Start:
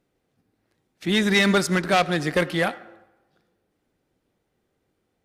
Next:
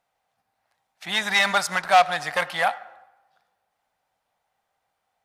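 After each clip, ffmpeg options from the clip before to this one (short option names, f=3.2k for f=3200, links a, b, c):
-af "lowshelf=f=520:t=q:w=3:g=-13.5"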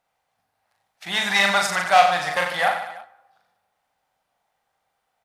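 -af "aecho=1:1:40|90|152.5|230.6|328.3:0.631|0.398|0.251|0.158|0.1"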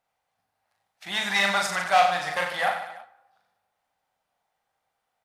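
-af "flanger=delay=7.7:depth=5.4:regen=-70:speed=0.82:shape=triangular"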